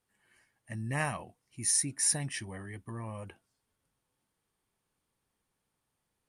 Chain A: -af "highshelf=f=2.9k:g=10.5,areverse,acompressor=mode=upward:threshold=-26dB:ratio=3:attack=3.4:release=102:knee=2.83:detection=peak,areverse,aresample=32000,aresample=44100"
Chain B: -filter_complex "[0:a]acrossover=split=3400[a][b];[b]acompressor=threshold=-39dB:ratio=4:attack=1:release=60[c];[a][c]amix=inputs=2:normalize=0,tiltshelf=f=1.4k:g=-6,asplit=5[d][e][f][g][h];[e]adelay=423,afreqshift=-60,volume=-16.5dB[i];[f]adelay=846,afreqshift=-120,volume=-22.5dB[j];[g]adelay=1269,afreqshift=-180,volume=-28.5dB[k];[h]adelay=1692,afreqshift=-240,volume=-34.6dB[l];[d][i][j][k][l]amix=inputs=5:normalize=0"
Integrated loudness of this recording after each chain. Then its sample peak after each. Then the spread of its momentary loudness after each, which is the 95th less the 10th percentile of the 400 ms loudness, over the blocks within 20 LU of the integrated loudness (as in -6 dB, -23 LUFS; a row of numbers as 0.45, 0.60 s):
-23.5, -37.0 LUFS; -3.5, -17.5 dBFS; 22, 14 LU